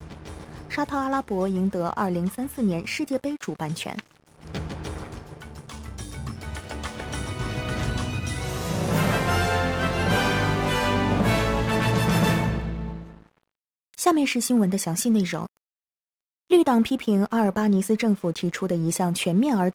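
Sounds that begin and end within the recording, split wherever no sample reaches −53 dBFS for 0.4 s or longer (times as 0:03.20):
0:13.94–0:15.57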